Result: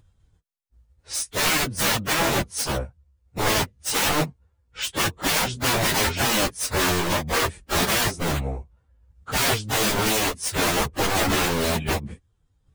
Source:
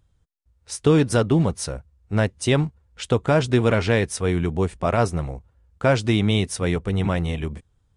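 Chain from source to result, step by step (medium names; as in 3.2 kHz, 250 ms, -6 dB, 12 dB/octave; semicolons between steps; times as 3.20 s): transient shaper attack 0 dB, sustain -7 dB; integer overflow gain 20.5 dB; plain phase-vocoder stretch 1.6×; trim +7 dB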